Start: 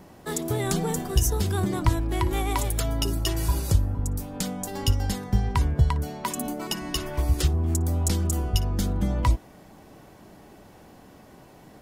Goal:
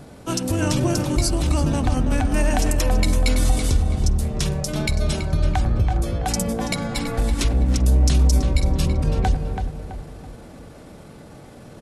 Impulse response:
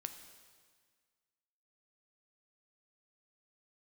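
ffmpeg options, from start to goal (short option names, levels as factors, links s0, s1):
-filter_complex "[0:a]alimiter=limit=0.133:level=0:latency=1:release=69,asetrate=34006,aresample=44100,atempo=1.29684,asplit=2[s0][s1];[s1]adelay=330,lowpass=f=2700:p=1,volume=0.501,asplit=2[s2][s3];[s3]adelay=330,lowpass=f=2700:p=1,volume=0.41,asplit=2[s4][s5];[s5]adelay=330,lowpass=f=2700:p=1,volume=0.41,asplit=2[s6][s7];[s7]adelay=330,lowpass=f=2700:p=1,volume=0.41,asplit=2[s8][s9];[s9]adelay=330,lowpass=f=2700:p=1,volume=0.41[s10];[s0][s2][s4][s6][s8][s10]amix=inputs=6:normalize=0,asplit=2[s11][s12];[1:a]atrim=start_sample=2205,lowpass=2000,adelay=96[s13];[s12][s13]afir=irnorm=-1:irlink=0,volume=0.299[s14];[s11][s14]amix=inputs=2:normalize=0,volume=2.11"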